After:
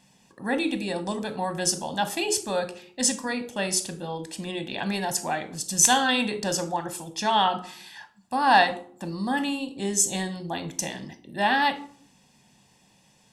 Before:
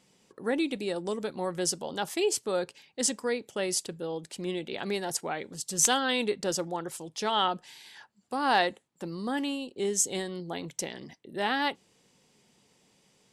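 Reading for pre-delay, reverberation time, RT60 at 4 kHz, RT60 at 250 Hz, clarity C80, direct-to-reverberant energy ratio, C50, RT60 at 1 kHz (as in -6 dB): 15 ms, 0.55 s, 0.35 s, 0.75 s, 18.0 dB, 9.0 dB, 13.5 dB, 0.50 s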